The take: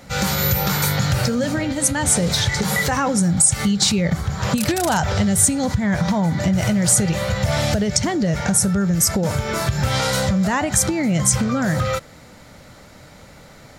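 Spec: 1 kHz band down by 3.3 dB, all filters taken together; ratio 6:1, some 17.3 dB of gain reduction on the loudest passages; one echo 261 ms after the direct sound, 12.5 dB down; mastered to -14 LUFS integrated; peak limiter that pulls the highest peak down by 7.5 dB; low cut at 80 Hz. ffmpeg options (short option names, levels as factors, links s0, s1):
-af "highpass=80,equalizer=f=1000:t=o:g=-4.5,acompressor=threshold=0.0282:ratio=6,alimiter=level_in=1.06:limit=0.0631:level=0:latency=1,volume=0.944,aecho=1:1:261:0.237,volume=9.44"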